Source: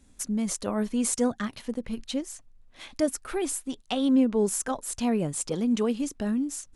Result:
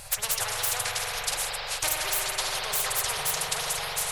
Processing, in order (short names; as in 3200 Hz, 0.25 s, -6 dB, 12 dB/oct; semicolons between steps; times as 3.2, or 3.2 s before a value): reverse delay 0.102 s, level -10 dB; de-esser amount 50%; elliptic band-stop 110–590 Hz, stop band 60 dB; bell 200 Hz -3 dB 0.93 oct; time stretch by phase-locked vocoder 0.61×; flange 0.75 Hz, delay 4.6 ms, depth 6.1 ms, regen -50%; formant shift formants +4 st; spring tank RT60 3.2 s, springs 44 ms, chirp 35 ms, DRR 1 dB; spectral compressor 4:1; gain +7 dB